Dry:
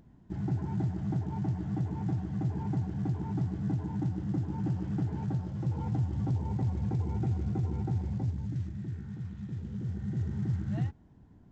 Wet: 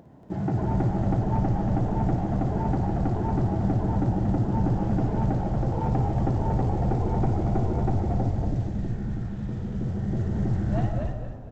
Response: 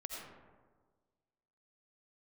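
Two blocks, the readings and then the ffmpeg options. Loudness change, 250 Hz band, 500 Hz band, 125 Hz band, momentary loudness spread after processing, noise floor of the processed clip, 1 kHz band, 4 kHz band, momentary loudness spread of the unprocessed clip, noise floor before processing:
+7.0 dB, +7.5 dB, +14.0 dB, +6.0 dB, 6 LU, -34 dBFS, +14.5 dB, n/a, 6 LU, -57 dBFS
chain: -filter_complex "[0:a]highpass=88,equalizer=f=610:w=1.1:g=12.5,asoftclip=type=tanh:threshold=-25dB,asplit=5[a][b][c][d][e];[b]adelay=232,afreqshift=-78,volume=-3.5dB[f];[c]adelay=464,afreqshift=-156,volume=-13.4dB[g];[d]adelay=696,afreqshift=-234,volume=-23.3dB[h];[e]adelay=928,afreqshift=-312,volume=-33.2dB[i];[a][f][g][h][i]amix=inputs=5:normalize=0,asplit=2[j][k];[1:a]atrim=start_sample=2205,adelay=56[l];[k][l]afir=irnorm=-1:irlink=0,volume=-4.5dB[m];[j][m]amix=inputs=2:normalize=0,volume=5.5dB"

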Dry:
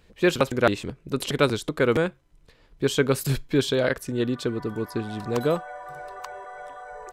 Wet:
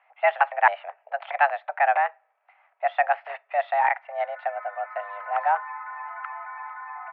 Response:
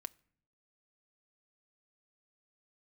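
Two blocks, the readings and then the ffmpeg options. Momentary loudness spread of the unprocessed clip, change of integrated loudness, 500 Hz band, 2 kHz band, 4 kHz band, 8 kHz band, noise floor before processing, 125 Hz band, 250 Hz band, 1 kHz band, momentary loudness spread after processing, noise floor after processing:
16 LU, -0.5 dB, -5.0 dB, +4.0 dB, under -15 dB, under -40 dB, -59 dBFS, under -40 dB, under -40 dB, +11.0 dB, 14 LU, -69 dBFS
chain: -filter_complex "[0:a]asplit=2[a][b];[1:a]atrim=start_sample=2205[c];[b][c]afir=irnorm=-1:irlink=0,volume=-4dB[d];[a][d]amix=inputs=2:normalize=0,highpass=f=400:t=q:w=0.5412,highpass=f=400:t=q:w=1.307,lowpass=f=2.1k:t=q:w=0.5176,lowpass=f=2.1k:t=q:w=0.7071,lowpass=f=2.1k:t=q:w=1.932,afreqshift=290"

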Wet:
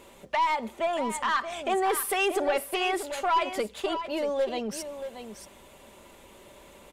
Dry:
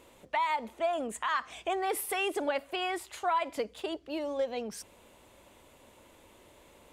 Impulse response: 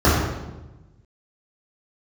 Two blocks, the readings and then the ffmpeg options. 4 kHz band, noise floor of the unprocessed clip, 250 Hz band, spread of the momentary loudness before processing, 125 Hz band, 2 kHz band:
+5.0 dB, -59 dBFS, +5.0 dB, 7 LU, n/a, +4.5 dB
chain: -filter_complex "[0:a]aecho=1:1:5.1:0.35,aeval=exprs='(tanh(15.8*val(0)+0.1)-tanh(0.1))/15.8':c=same,asplit=2[a][b];[b]aecho=0:1:630:0.316[c];[a][c]amix=inputs=2:normalize=0,volume=5.5dB"

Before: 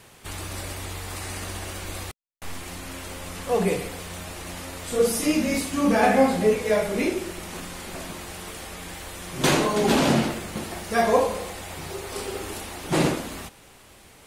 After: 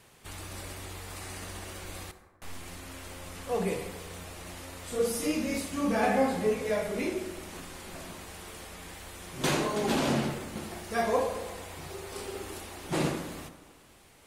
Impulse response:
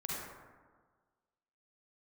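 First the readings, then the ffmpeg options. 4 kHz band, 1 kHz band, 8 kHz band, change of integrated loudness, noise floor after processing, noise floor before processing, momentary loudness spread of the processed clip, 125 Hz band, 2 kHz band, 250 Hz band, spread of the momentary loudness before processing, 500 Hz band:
-7.5 dB, -7.0 dB, -7.5 dB, -7.0 dB, -57 dBFS, -51 dBFS, 16 LU, -7.0 dB, -7.0 dB, -7.5 dB, 16 LU, -7.0 dB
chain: -filter_complex "[0:a]asplit=2[a][b];[1:a]atrim=start_sample=2205[c];[b][c]afir=irnorm=-1:irlink=0,volume=-10.5dB[d];[a][d]amix=inputs=2:normalize=0,volume=-9dB"

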